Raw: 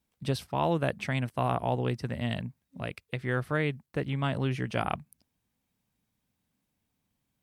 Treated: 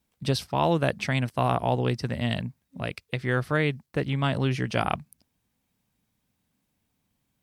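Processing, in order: dynamic bell 5 kHz, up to +6 dB, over -57 dBFS, Q 1.4; trim +4 dB

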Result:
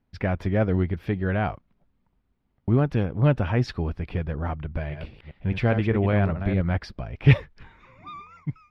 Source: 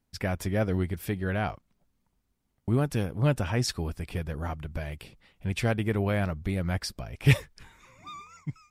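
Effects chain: 4.70–6.77 s: chunks repeated in reverse 204 ms, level -8 dB; distance through air 310 m; trim +5 dB

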